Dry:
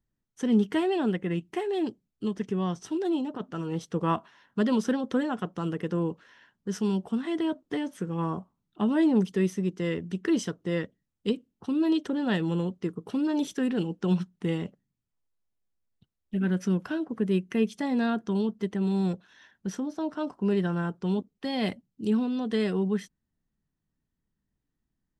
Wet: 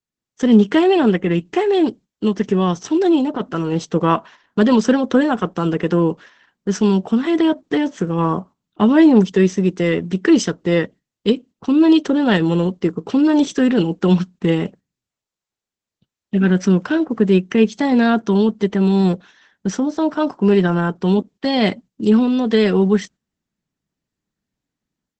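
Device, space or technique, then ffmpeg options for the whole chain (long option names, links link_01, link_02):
video call: -af "highpass=frequency=170:poles=1,dynaudnorm=framelen=150:gausssize=3:maxgain=12dB,agate=range=-9dB:threshold=-39dB:ratio=16:detection=peak,volume=2dB" -ar 48000 -c:a libopus -b:a 12k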